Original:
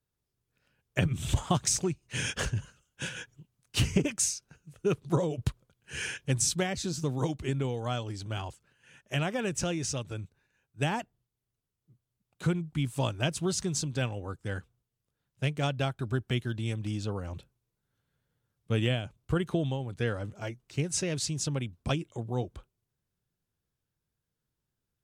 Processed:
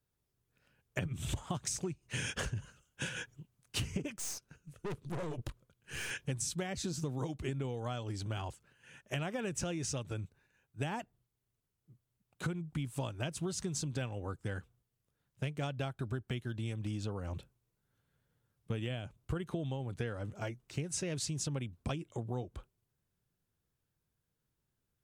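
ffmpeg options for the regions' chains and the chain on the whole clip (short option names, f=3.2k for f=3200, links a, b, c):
-filter_complex "[0:a]asettb=1/sr,asplit=3[a][b][c];[a]atrim=end=4.164[d];[b]atrim=start=4.16:end=6.11,asetpts=PTS-STARTPTS,afade=t=in:d=0.004:c=qsin,afade=t=out:st=1.946:d=0.004:c=qsin,equalizer=f=780:w=7.6:g=-5.5,aeval=exprs='(tanh(63.1*val(0)+0.55)-tanh(0.55))/63.1':c=same[e];[c]atrim=start=6.106[f];[d][e]acrossfade=d=0.004:c1=hsin:c2=qsin[g];[g][f]acrossfade=d=0.004:c1=qsin:c2=hsin,equalizer=f=4.6k:t=o:w=1.4:g=-2.5,acompressor=threshold=-35dB:ratio=6,volume=1dB"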